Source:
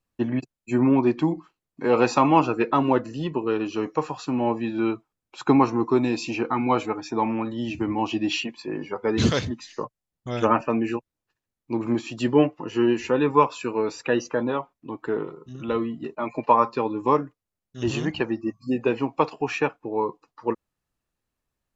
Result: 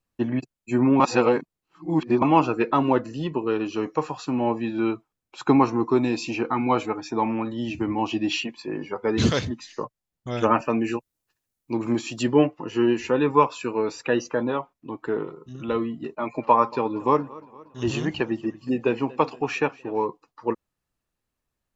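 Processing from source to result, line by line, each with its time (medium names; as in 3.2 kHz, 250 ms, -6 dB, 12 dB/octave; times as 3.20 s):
1.00–2.22 s: reverse
10.53–12.23 s: treble shelf 5.2 kHz +11 dB
16.10–20.07 s: modulated delay 232 ms, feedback 56%, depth 87 cents, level -21.5 dB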